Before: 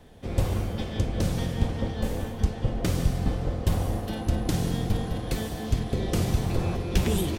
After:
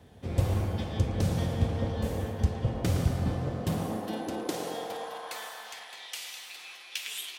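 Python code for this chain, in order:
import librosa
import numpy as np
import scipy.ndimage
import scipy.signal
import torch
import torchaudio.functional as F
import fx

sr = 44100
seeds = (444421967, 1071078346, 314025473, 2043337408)

y = fx.filter_sweep_highpass(x, sr, from_hz=79.0, to_hz=2600.0, start_s=3.15, end_s=6.07, q=1.6)
y = fx.echo_banded(y, sr, ms=113, feedback_pct=80, hz=840.0, wet_db=-3.5)
y = y * 10.0 ** (-3.5 / 20.0)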